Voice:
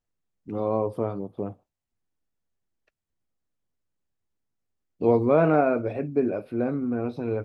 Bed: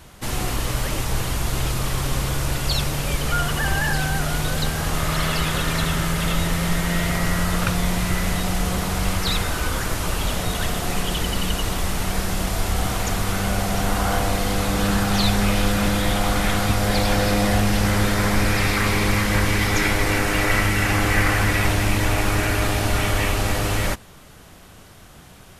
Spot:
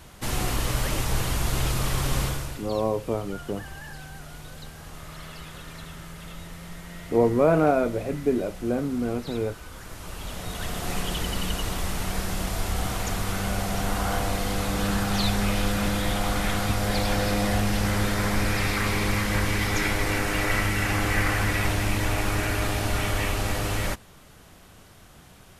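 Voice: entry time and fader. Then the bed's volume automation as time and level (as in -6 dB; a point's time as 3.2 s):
2.10 s, 0.0 dB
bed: 2.24 s -2 dB
2.7 s -18.5 dB
9.67 s -18.5 dB
10.91 s -5 dB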